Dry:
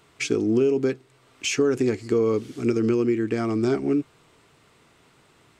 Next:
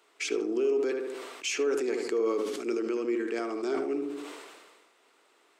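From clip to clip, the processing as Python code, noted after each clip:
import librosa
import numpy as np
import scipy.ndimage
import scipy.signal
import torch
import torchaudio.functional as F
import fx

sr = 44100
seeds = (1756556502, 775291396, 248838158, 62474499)

y = scipy.signal.sosfilt(scipy.signal.butter(4, 340.0, 'highpass', fs=sr, output='sos'), x)
y = fx.echo_tape(y, sr, ms=76, feedback_pct=41, wet_db=-5.5, lp_hz=1700.0, drive_db=16.0, wow_cents=11)
y = fx.sustainer(y, sr, db_per_s=37.0)
y = y * librosa.db_to_amplitude(-6.0)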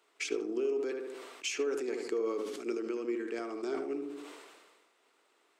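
y = fx.transient(x, sr, attack_db=4, sustain_db=0)
y = y * librosa.db_to_amplitude(-6.0)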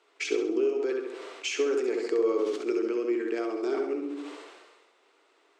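y = scipy.signal.sosfilt(scipy.signal.butter(2, 6400.0, 'lowpass', fs=sr, output='sos'), x)
y = fx.low_shelf_res(y, sr, hz=240.0, db=-9.5, q=1.5)
y = fx.room_flutter(y, sr, wall_m=11.4, rt60_s=0.56)
y = y * librosa.db_to_amplitude(4.0)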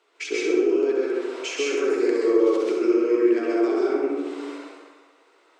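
y = fx.rev_plate(x, sr, seeds[0], rt60_s=1.1, hf_ratio=0.45, predelay_ms=115, drr_db=-5.0)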